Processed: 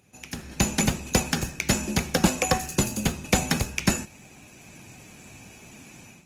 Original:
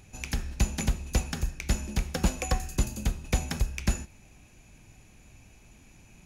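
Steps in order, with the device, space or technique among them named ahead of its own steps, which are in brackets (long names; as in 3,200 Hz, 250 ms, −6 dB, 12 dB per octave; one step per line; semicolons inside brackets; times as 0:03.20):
video call (high-pass filter 140 Hz 12 dB per octave; automatic gain control gain up to 15 dB; level −3.5 dB; Opus 20 kbit/s 48,000 Hz)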